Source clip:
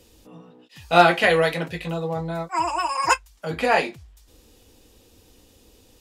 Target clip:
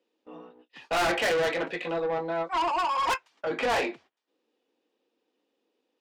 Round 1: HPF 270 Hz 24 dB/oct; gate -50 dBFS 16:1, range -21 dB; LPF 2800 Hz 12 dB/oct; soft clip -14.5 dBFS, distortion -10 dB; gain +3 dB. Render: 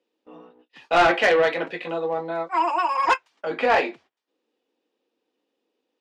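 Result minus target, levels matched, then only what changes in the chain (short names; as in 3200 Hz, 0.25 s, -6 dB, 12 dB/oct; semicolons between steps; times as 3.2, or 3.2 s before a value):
soft clip: distortion -7 dB
change: soft clip -26 dBFS, distortion -3 dB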